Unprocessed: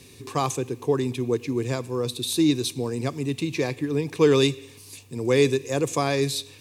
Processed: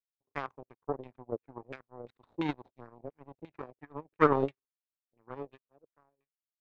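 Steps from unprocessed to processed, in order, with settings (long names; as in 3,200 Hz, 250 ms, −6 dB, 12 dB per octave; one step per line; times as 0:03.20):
fade-out on the ending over 2.20 s
power curve on the samples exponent 3
auto-filter low-pass saw down 2.9 Hz 460–2,500 Hz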